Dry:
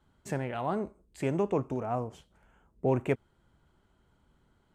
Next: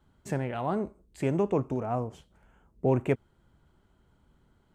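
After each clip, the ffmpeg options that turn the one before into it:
-af "lowshelf=f=450:g=3.5"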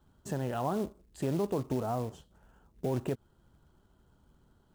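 -af "alimiter=limit=0.075:level=0:latency=1:release=139,equalizer=f=2200:t=o:w=0.34:g=-14.5,acrusher=bits=5:mode=log:mix=0:aa=0.000001"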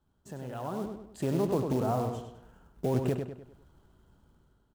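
-filter_complex "[0:a]dynaudnorm=f=380:g=5:m=3.55,asplit=2[s0][s1];[s1]adelay=100,lowpass=f=4600:p=1,volume=0.531,asplit=2[s2][s3];[s3]adelay=100,lowpass=f=4600:p=1,volume=0.43,asplit=2[s4][s5];[s5]adelay=100,lowpass=f=4600:p=1,volume=0.43,asplit=2[s6][s7];[s7]adelay=100,lowpass=f=4600:p=1,volume=0.43,asplit=2[s8][s9];[s9]adelay=100,lowpass=f=4600:p=1,volume=0.43[s10];[s2][s4][s6][s8][s10]amix=inputs=5:normalize=0[s11];[s0][s11]amix=inputs=2:normalize=0,volume=0.376"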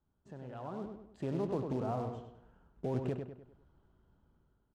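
-af "adynamicsmooth=sensitivity=6.5:basefreq=3500,volume=0.473"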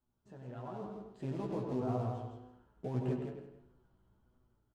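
-filter_complex "[0:a]asplit=2[s0][s1];[s1]aecho=0:1:164|328|492:0.562|0.118|0.0248[s2];[s0][s2]amix=inputs=2:normalize=0,flanger=delay=7.9:depth=1.6:regen=44:speed=1.6:shape=sinusoidal,asplit=2[s3][s4];[s4]adelay=16,volume=0.562[s5];[s3][s5]amix=inputs=2:normalize=0"

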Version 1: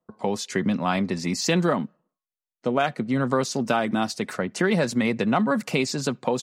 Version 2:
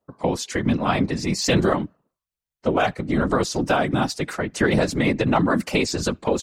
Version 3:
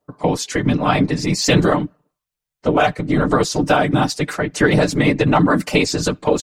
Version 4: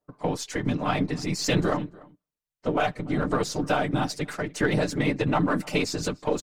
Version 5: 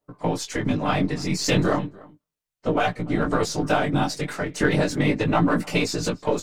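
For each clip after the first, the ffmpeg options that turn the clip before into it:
-af "afftfilt=real='hypot(re,im)*cos(2*PI*random(0))':imag='hypot(re,im)*sin(2*PI*random(1))':win_size=512:overlap=0.75,volume=2.66"
-af "aecho=1:1:6.7:0.45,volume=1.58"
-filter_complex "[0:a]aeval=exprs='if(lt(val(0),0),0.708*val(0),val(0))':c=same,asplit=2[s0][s1];[s1]adelay=291.5,volume=0.0708,highshelf=f=4000:g=-6.56[s2];[s0][s2]amix=inputs=2:normalize=0,volume=0.398"
-af "flanger=delay=17:depth=4.8:speed=0.34,volume=2"

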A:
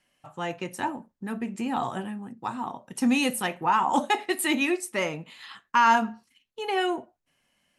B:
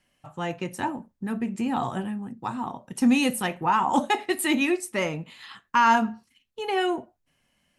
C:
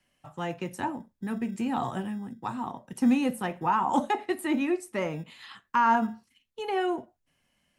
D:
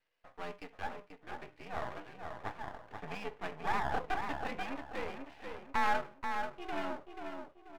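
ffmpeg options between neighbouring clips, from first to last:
-af "lowshelf=f=190:g=8.5"
-filter_complex "[0:a]acrossover=split=130|1700[s0][s1][s2];[s0]acrusher=samples=25:mix=1:aa=0.000001[s3];[s2]acompressor=threshold=0.0112:ratio=6[s4];[s3][s1][s4]amix=inputs=3:normalize=0,volume=0.75"
-filter_complex "[0:a]highpass=f=440:t=q:w=0.5412,highpass=f=440:t=q:w=1.307,lowpass=f=2900:t=q:w=0.5176,lowpass=f=2900:t=q:w=0.7071,lowpass=f=2900:t=q:w=1.932,afreqshift=-82,asplit=2[s0][s1];[s1]adelay=485,lowpass=f=2000:p=1,volume=0.562,asplit=2[s2][s3];[s3]adelay=485,lowpass=f=2000:p=1,volume=0.38,asplit=2[s4][s5];[s5]adelay=485,lowpass=f=2000:p=1,volume=0.38,asplit=2[s6][s7];[s7]adelay=485,lowpass=f=2000:p=1,volume=0.38,asplit=2[s8][s9];[s9]adelay=485,lowpass=f=2000:p=1,volume=0.38[s10];[s0][s2][s4][s6][s8][s10]amix=inputs=6:normalize=0,aeval=exprs='max(val(0),0)':c=same,volume=0.668"

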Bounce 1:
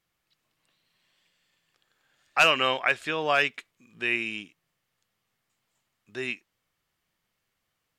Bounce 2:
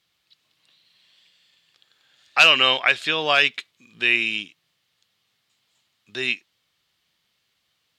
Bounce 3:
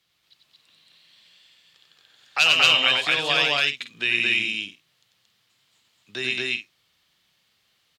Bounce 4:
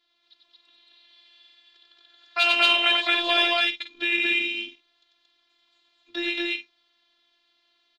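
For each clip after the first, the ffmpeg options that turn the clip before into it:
-filter_complex "[0:a]equalizer=f=3800:w=1.1:g=12.5,asplit=2[s0][s1];[s1]alimiter=limit=0.376:level=0:latency=1,volume=0.841[s2];[s0][s2]amix=inputs=2:normalize=0,highpass=56,volume=0.708"
-filter_complex "[0:a]acrossover=split=140|3000[s0][s1][s2];[s1]acompressor=threshold=0.0251:ratio=2[s3];[s0][s3][s2]amix=inputs=3:normalize=0,asplit=2[s4][s5];[s5]aecho=0:1:93.29|227.4|277:0.631|1|0.316[s6];[s4][s6]amix=inputs=2:normalize=0"
-af "highpass=f=160:w=0.5412,highpass=f=160:w=1.3066,equalizer=f=190:t=q:w=4:g=5,equalizer=f=560:t=q:w=4:g=4,equalizer=f=2900:t=q:w=4:g=-9,lowpass=f=4100:w=0.5412,lowpass=f=4100:w=1.3066,afftfilt=real='hypot(re,im)*cos(PI*b)':imag='0':win_size=512:overlap=0.75,aexciter=amount=1.4:drive=7.7:freq=2800,volume=1.5"

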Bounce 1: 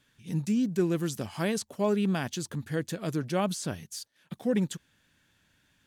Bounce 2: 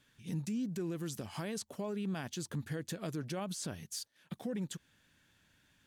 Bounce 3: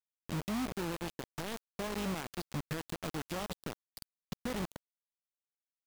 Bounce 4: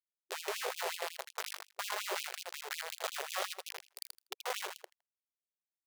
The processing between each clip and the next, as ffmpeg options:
-af "alimiter=level_in=1.68:limit=0.0631:level=0:latency=1:release=153,volume=0.596,volume=0.841"
-af "aresample=11025,aeval=exprs='sgn(val(0))*max(abs(val(0))-0.00119,0)':c=same,aresample=44100,aeval=exprs='val(0)+0.00316*(sin(2*PI*50*n/s)+sin(2*PI*2*50*n/s)/2+sin(2*PI*3*50*n/s)/3+sin(2*PI*4*50*n/s)/4+sin(2*PI*5*50*n/s)/5)':c=same,acrusher=bits=5:mix=0:aa=0.000001,volume=0.891"
-af "acrusher=bits=3:dc=4:mix=0:aa=0.000001,aecho=1:1:81|162|243:0.562|0.09|0.0144,afftfilt=real='re*gte(b*sr/1024,350*pow(2500/350,0.5+0.5*sin(2*PI*5.5*pts/sr)))':imag='im*gte(b*sr/1024,350*pow(2500/350,0.5+0.5*sin(2*PI*5.5*pts/sr)))':win_size=1024:overlap=0.75,volume=1.88"

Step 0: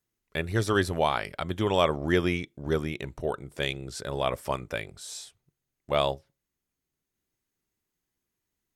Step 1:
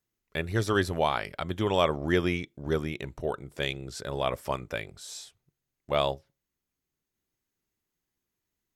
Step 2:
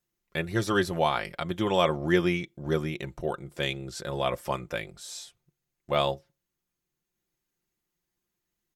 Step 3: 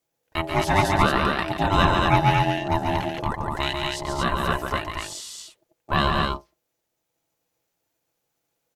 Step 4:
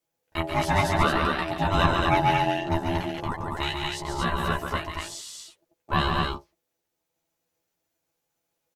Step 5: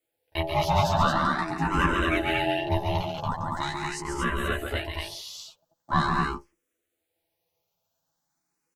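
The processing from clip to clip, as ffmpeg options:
-af "equalizer=f=9100:t=o:w=0.22:g=-5.5,volume=0.891"
-af "aecho=1:1:5.7:0.53"
-af "aecho=1:1:139.9|230.3:0.562|0.708,aeval=exprs='val(0)*sin(2*PI*490*n/s)':c=same,volume=2.11"
-filter_complex "[0:a]asplit=2[s0][s1];[s1]adelay=12,volume=0.708[s2];[s0][s2]amix=inputs=2:normalize=0,volume=0.596"
-filter_complex "[0:a]asplit=2[s0][s1];[s1]asoftclip=type=tanh:threshold=0.0708,volume=0.447[s2];[s0][s2]amix=inputs=2:normalize=0,asplit=2[s3][s4];[s4]afreqshift=0.43[s5];[s3][s5]amix=inputs=2:normalize=1"

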